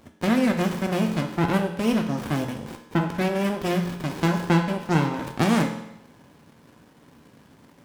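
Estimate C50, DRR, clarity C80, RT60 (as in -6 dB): 7.5 dB, 3.5 dB, 10.0 dB, 0.85 s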